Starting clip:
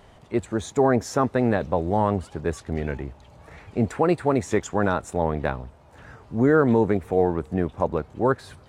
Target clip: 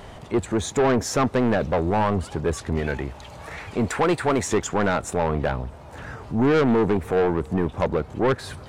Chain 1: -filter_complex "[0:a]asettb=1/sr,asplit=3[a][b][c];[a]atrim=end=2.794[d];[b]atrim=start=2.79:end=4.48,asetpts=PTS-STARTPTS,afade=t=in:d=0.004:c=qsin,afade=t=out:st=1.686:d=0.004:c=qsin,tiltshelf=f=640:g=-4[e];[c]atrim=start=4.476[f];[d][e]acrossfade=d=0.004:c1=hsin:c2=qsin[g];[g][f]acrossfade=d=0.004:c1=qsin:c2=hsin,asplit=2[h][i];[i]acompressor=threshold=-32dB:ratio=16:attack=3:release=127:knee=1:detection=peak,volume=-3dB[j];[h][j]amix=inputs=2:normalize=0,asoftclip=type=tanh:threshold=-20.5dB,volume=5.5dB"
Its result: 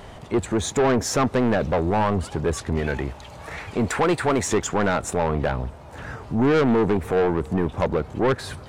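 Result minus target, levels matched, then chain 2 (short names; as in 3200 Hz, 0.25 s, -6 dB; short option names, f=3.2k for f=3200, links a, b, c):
compressor: peak gain reduction -11 dB
-filter_complex "[0:a]asettb=1/sr,asplit=3[a][b][c];[a]atrim=end=2.794[d];[b]atrim=start=2.79:end=4.48,asetpts=PTS-STARTPTS,afade=t=in:d=0.004:c=qsin,afade=t=out:st=1.686:d=0.004:c=qsin,tiltshelf=f=640:g=-4[e];[c]atrim=start=4.476[f];[d][e]acrossfade=d=0.004:c1=hsin:c2=qsin[g];[g][f]acrossfade=d=0.004:c1=qsin:c2=hsin,asplit=2[h][i];[i]acompressor=threshold=-44dB:ratio=16:attack=3:release=127:knee=1:detection=peak,volume=-3dB[j];[h][j]amix=inputs=2:normalize=0,asoftclip=type=tanh:threshold=-20.5dB,volume=5.5dB"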